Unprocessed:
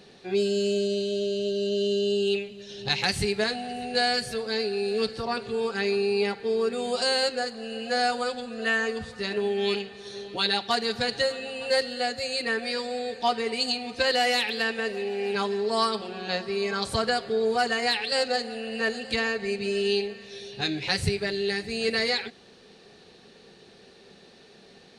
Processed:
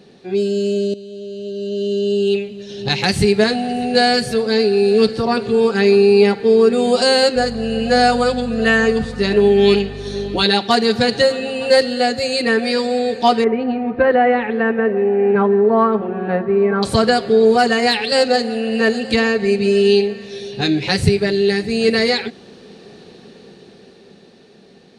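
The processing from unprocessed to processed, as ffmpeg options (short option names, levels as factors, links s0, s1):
-filter_complex "[0:a]asettb=1/sr,asplit=3[s0][s1][s2];[s0]atrim=end=7.364[s3];[s1]atrim=start=7.36:end=10.44,asetpts=PTS-STARTPTS,afade=t=in:d=0.004:c=qsin,afade=t=out:st=3.076:d=0.004:c=qsin,aeval=exprs='val(0)+0.00794*(sin(2*PI*50*n/s)+sin(2*PI*2*50*n/s)/2+sin(2*PI*3*50*n/s)/3+sin(2*PI*4*50*n/s)/4+sin(2*PI*5*50*n/s)/5)':c=same[s4];[s2]atrim=start=10.436[s5];[s3][s4]acrossfade=d=0.004:c1=hsin:c2=qsin[s6];[s6][s5]acrossfade=d=0.004:c1=qsin:c2=hsin,asettb=1/sr,asplit=3[s7][s8][s9];[s7]atrim=end=13.444[s10];[s8]atrim=start=13.44:end=16.83,asetpts=PTS-STARTPTS,afade=t=in:d=0.004:c=qsin,afade=t=out:st=3.386:d=0.004:c=qsin,lowpass=f=1800:w=0.5412,lowpass=f=1800:w=1.3066[s11];[s9]atrim=start=16.826[s12];[s10][s11]acrossfade=d=0.004:c1=hsin:c2=qsin[s13];[s13][s12]acrossfade=d=0.004:c1=qsin:c2=hsin,asplit=2[s14][s15];[s14]atrim=end=0.94,asetpts=PTS-STARTPTS,afade=t=out:st=0.936:d=0.004:c=hsin:silence=0.177828[s16];[s15]atrim=start=0.94,asetpts=PTS-STARTPTS,afade=t=in:d=2.6:silence=0.177828[s17];[s16][s17]concat=n=2:v=0:a=1,equalizer=f=230:t=o:w=2.6:g=8.5,dynaudnorm=f=110:g=31:m=3.76"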